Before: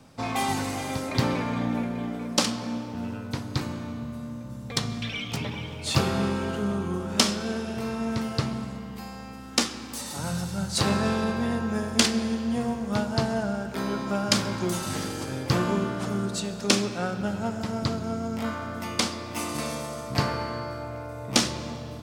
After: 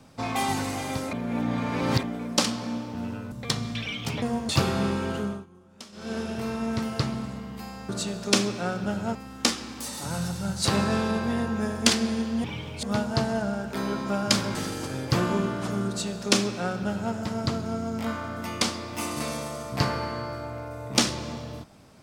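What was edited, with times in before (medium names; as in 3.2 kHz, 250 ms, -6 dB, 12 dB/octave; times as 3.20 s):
1.13–2.03 s: reverse
3.32–4.59 s: delete
5.49–5.88 s: swap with 12.57–12.84 s
6.58–7.58 s: dip -23.5 dB, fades 0.27 s
14.56–14.93 s: delete
16.26–17.52 s: copy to 9.28 s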